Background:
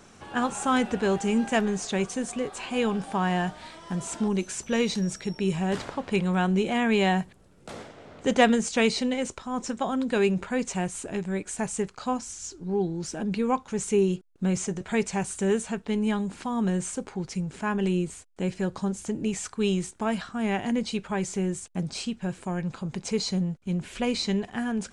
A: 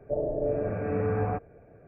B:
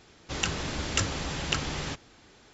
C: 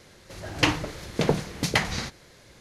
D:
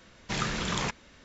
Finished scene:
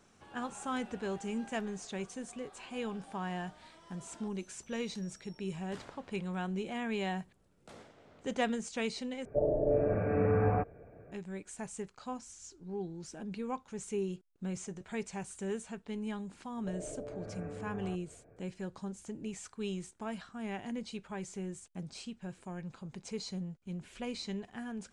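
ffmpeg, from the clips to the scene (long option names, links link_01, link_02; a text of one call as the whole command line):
ffmpeg -i bed.wav -i cue0.wav -filter_complex "[1:a]asplit=2[link_01][link_02];[0:a]volume=-12.5dB[link_03];[link_02]acompressor=threshold=-33dB:ratio=6:attack=3.2:release=140:knee=1:detection=peak[link_04];[link_03]asplit=2[link_05][link_06];[link_05]atrim=end=9.254[link_07];[link_01]atrim=end=1.87,asetpts=PTS-STARTPTS,volume=-0.5dB[link_08];[link_06]atrim=start=11.116[link_09];[link_04]atrim=end=1.87,asetpts=PTS-STARTPTS,volume=-7dB,afade=type=in:duration=0.004:curve=hsin,afade=type=out:start_time=1.866:duration=0.004:curve=hsin,adelay=16570[link_10];[link_07][link_08]acrossfade=duration=0.004:curve1=hsin:curve2=hsin[link_11];[link_11][link_09]acrossfade=duration=0.004:curve1=hsin:curve2=hsin[link_12];[link_12][link_10]amix=inputs=2:normalize=0" out.wav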